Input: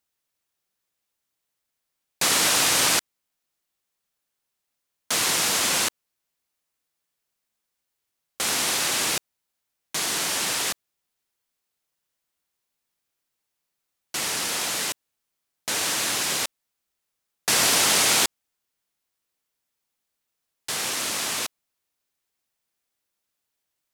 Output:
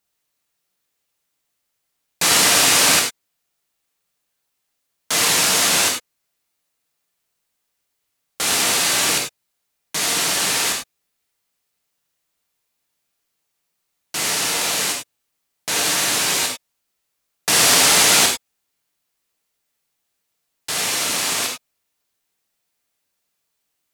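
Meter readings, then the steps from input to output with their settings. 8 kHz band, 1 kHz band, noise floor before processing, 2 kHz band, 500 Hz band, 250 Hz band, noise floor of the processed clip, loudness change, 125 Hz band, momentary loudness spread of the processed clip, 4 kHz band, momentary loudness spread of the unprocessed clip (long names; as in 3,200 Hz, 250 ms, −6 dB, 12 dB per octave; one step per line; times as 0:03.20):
+6.0 dB, +6.0 dB, −81 dBFS, +6.0 dB, +6.0 dB, +5.5 dB, −75 dBFS, +6.0 dB, +6.0 dB, 15 LU, +6.0 dB, 12 LU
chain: reverb whose tail is shaped and stops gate 120 ms flat, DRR 0 dB
level +3 dB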